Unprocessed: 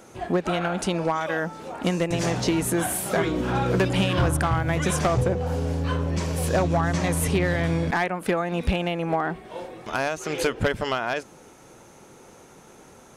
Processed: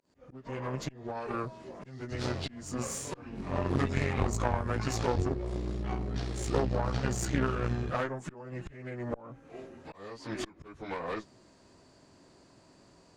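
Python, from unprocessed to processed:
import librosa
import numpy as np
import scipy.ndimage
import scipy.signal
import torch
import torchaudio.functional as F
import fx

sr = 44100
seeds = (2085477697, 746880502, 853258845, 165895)

y = fx.pitch_bins(x, sr, semitones=-5.5)
y = fx.auto_swell(y, sr, attack_ms=409.0)
y = fx.cheby_harmonics(y, sr, harmonics=(2, 3), levels_db=(-7, -18), full_scale_db=-11.5)
y = y * librosa.db_to_amplitude(-3.5)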